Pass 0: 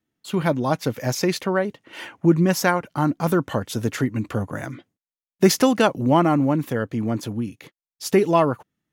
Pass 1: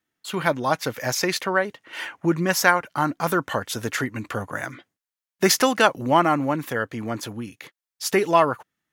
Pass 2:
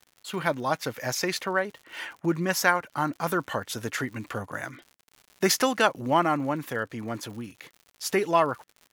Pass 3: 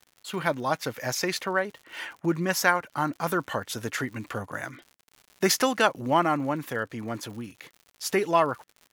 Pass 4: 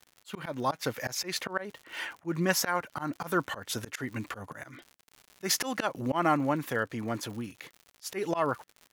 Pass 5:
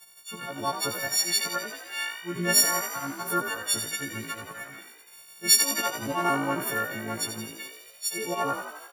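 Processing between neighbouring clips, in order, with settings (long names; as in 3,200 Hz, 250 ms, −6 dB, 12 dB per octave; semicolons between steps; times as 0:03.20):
drawn EQ curve 220 Hz 0 dB, 1,700 Hz +13 dB, 2,600 Hz +10 dB; level −7 dB
surface crackle 120 per second −35 dBFS; level −4.5 dB
no processing that can be heard
volume swells 143 ms
every partial snapped to a pitch grid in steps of 4 semitones; echo with shifted repeats 85 ms, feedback 63%, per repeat +54 Hz, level −9 dB; level −2 dB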